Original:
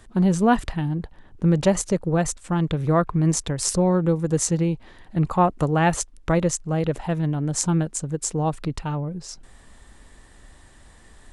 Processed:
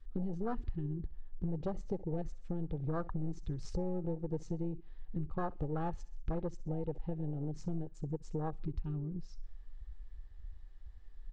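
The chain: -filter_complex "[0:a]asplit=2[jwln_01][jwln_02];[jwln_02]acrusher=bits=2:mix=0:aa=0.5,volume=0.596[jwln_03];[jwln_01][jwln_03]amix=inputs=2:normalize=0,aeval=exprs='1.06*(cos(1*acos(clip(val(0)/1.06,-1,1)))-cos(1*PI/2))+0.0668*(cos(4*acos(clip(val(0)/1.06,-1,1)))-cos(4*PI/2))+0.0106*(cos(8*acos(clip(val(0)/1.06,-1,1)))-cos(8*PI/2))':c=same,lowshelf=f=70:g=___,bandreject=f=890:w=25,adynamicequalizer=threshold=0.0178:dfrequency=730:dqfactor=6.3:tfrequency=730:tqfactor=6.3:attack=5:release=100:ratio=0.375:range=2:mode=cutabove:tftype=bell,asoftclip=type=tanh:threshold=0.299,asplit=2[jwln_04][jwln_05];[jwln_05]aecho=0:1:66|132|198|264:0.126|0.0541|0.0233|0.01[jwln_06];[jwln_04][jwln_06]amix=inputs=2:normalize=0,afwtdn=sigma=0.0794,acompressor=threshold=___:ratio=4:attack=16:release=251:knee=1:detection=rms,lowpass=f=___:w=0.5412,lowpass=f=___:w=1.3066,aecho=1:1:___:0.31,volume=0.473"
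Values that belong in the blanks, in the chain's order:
10, 0.0447, 5500, 5500, 2.4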